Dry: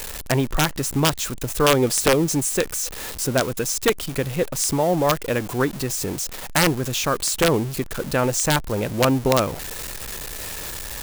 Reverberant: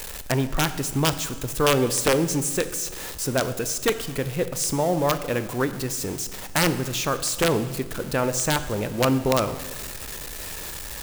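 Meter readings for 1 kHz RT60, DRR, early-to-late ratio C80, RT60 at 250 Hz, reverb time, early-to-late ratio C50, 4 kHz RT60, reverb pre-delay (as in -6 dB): 1.3 s, 11.0 dB, 14.0 dB, 1.8 s, 1.4 s, 12.5 dB, 1.2 s, 20 ms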